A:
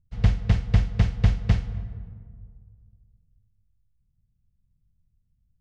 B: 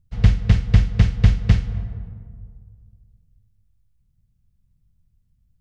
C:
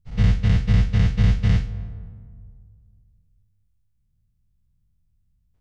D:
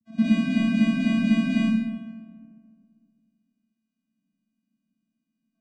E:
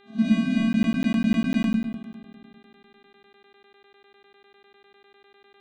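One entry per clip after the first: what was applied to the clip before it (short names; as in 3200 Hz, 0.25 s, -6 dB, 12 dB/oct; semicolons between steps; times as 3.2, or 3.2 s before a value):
dynamic EQ 740 Hz, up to -6 dB, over -45 dBFS, Q 1.1; gain +5.5 dB
spectral dilation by 0.12 s; gain -8.5 dB
vocoder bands 8, square 223 Hz; digital reverb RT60 0.86 s, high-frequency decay 1×, pre-delay 10 ms, DRR -6.5 dB
buzz 400 Hz, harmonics 10, -56 dBFS -4 dB/oct; pre-echo 43 ms -15 dB; crackling interface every 0.10 s, samples 512, zero, from 0.73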